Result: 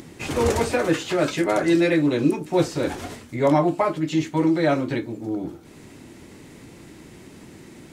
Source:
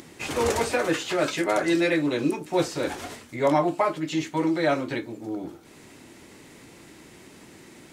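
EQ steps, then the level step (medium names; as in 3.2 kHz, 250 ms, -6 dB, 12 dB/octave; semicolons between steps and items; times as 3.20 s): bass shelf 330 Hz +9 dB; 0.0 dB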